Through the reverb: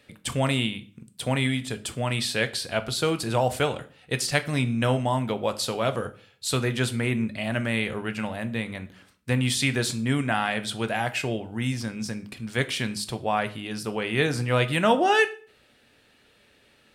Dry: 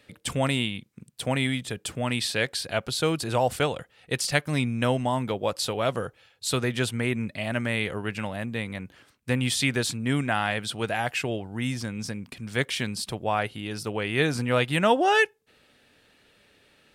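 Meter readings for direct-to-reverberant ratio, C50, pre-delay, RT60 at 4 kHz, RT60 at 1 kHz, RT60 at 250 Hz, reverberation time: 9.5 dB, 17.0 dB, 5 ms, 0.35 s, 0.40 s, 0.50 s, 0.45 s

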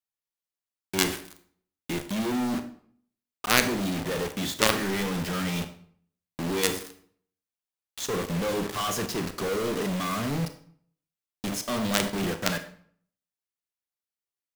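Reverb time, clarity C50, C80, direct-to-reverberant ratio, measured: 0.55 s, 11.5 dB, 15.0 dB, 8.5 dB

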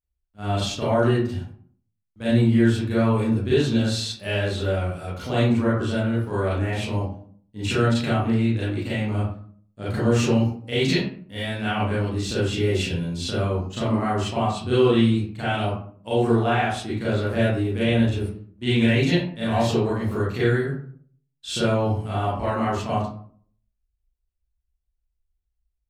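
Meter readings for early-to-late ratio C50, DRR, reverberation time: -0.5 dB, -10.5 dB, 0.50 s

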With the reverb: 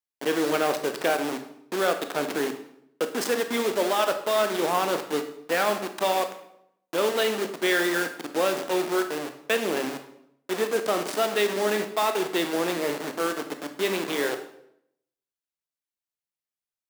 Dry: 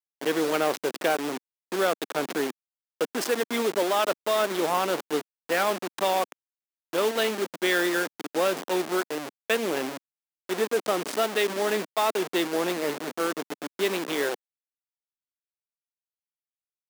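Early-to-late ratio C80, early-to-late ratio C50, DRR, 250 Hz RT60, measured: 13.0 dB, 10.0 dB, 7.0 dB, 0.80 s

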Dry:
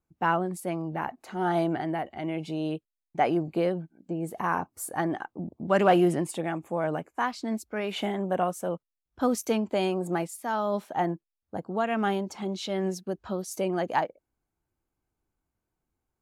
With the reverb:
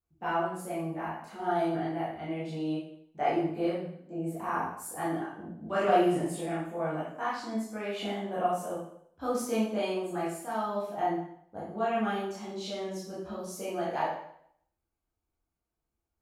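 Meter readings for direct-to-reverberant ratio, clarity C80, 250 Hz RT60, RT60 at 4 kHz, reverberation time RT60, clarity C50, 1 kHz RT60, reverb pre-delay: -9.5 dB, 5.5 dB, 0.65 s, 0.60 s, 0.70 s, 1.0 dB, 0.65 s, 8 ms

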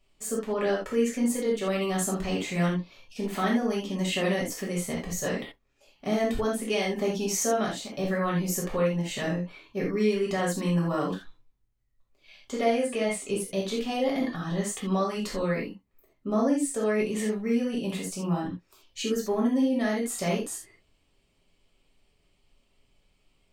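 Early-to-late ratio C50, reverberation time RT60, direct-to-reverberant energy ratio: 4.0 dB, not exponential, -5.0 dB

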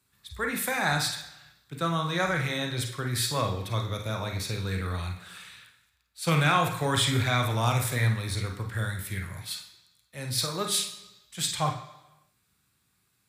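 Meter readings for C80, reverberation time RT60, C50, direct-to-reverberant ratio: 11.0 dB, 1.0 s, 6.0 dB, 2.5 dB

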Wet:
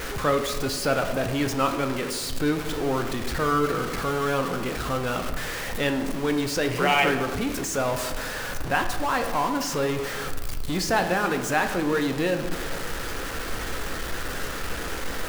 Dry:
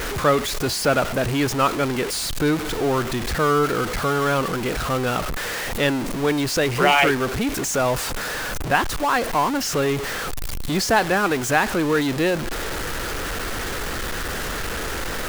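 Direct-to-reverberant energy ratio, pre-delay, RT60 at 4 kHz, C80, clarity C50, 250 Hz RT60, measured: 5.5 dB, 4 ms, 0.75 s, 10.0 dB, 8.5 dB, 1.8 s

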